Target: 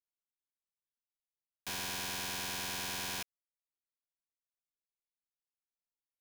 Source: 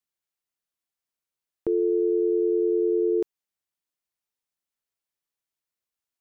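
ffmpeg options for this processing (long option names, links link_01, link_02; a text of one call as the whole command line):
ffmpeg -i in.wav -af "anlmdn=6.31,aeval=exprs='(mod(35.5*val(0)+1,2)-1)/35.5':channel_layout=same,volume=-3dB" out.wav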